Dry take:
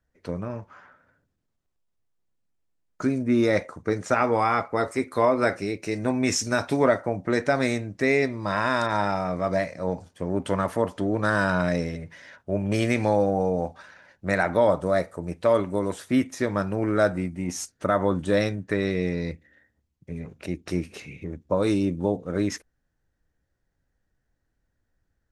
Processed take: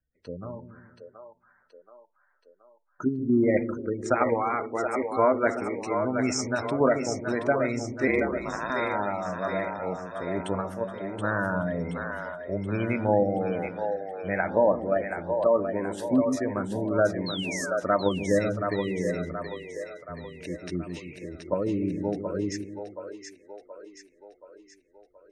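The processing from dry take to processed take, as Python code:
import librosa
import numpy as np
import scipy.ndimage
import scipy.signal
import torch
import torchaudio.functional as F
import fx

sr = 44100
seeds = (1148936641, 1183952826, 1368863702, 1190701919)

p1 = fx.noise_reduce_blind(x, sr, reduce_db=6)
p2 = fx.spec_gate(p1, sr, threshold_db=-20, keep='strong')
p3 = fx.level_steps(p2, sr, step_db=21)
p4 = p2 + (p3 * librosa.db_to_amplitude(-1.0))
p5 = fx.ring_mod(p4, sr, carrier_hz=57.0, at=(8.07, 8.7))
p6 = fx.comb_fb(p5, sr, f0_hz=190.0, decay_s=0.2, harmonics='all', damping=0.0, mix_pct=70, at=(10.6, 11.18), fade=0.02)
p7 = fx.spec_paint(p6, sr, seeds[0], shape='fall', start_s=17.26, length_s=0.51, low_hz=1200.0, high_hz=4400.0, level_db=-30.0)
p8 = p7 + fx.echo_split(p7, sr, split_hz=400.0, low_ms=148, high_ms=726, feedback_pct=52, wet_db=-6, dry=0)
y = p8 * librosa.db_to_amplitude(-5.5)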